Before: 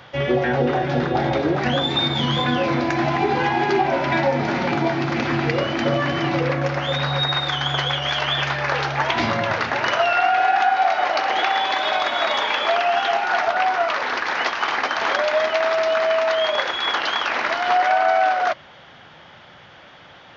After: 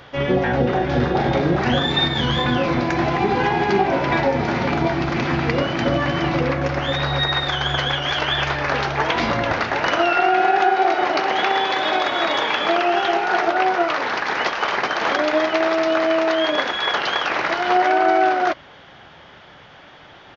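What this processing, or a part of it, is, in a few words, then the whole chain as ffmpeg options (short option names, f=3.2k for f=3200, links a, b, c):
octave pedal: -filter_complex "[0:a]asplit=2[a][b];[b]asetrate=22050,aresample=44100,atempo=2,volume=-6dB[c];[a][c]amix=inputs=2:normalize=0,asettb=1/sr,asplit=3[d][e][f];[d]atrim=end=0.884[g];[e]atrim=start=0.88:end=2.07,asetpts=PTS-STARTPTS,afade=t=in:d=0.004:c=qsin,afade=t=out:st=1.186:d=0.004:c=qsin,asplit=2[h][i];[i]adelay=41,volume=-5.5dB[j];[h][j]amix=inputs=2:normalize=0,atrim=end_sample=52479[k];[f]atrim=start=2.066[l];[g][k]acrossfade=d=0.004:c1=hsin:c2=qsin[m];[m][l]acrossfade=d=0.004:c1=qsin:c2=hsin"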